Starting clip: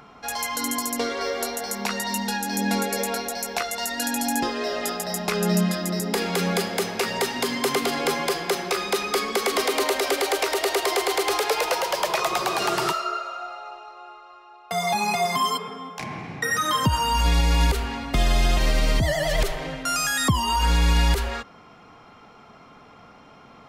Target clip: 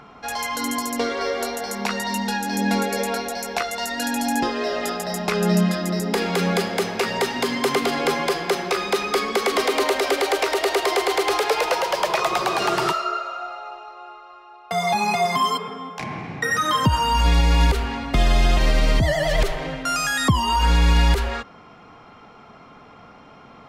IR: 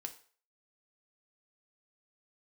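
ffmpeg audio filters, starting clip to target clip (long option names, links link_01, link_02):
-af "highshelf=frequency=6200:gain=-8.5,volume=3dB"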